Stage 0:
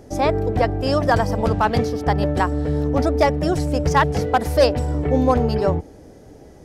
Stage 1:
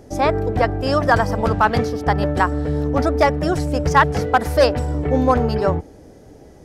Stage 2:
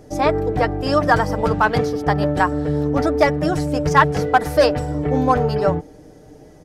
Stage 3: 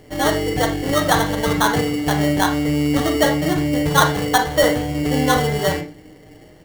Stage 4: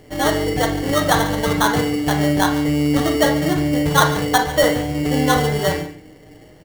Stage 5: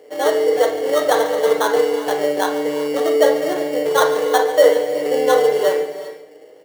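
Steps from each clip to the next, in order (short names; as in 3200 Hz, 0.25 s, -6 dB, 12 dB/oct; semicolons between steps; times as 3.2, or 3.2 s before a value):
dynamic EQ 1400 Hz, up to +6 dB, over -34 dBFS, Q 1.3
comb 6.6 ms, depth 46%; gain -1 dB
sample-rate reducer 2500 Hz, jitter 0%; on a send at -4 dB: reverb RT60 0.40 s, pre-delay 33 ms; on the sum: gain -2 dB
echo 0.143 s -15 dB
resonant high-pass 470 Hz, resonance Q 4.9; non-linear reverb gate 0.42 s rising, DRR 11 dB; gain -4.5 dB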